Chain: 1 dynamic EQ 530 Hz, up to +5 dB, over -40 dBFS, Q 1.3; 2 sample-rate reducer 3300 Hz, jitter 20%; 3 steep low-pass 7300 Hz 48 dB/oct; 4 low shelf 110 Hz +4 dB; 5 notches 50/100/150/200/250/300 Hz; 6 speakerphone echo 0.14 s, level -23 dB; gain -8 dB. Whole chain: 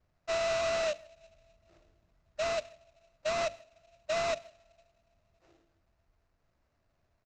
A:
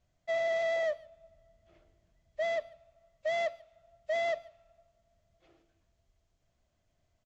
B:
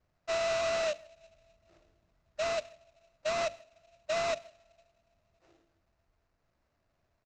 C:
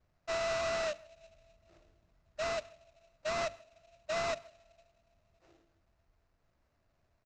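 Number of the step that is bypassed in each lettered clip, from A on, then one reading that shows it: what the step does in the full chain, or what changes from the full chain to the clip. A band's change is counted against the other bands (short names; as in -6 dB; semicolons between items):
2, 4 kHz band -6.5 dB; 4, 125 Hz band -2.0 dB; 1, 125 Hz band +2.0 dB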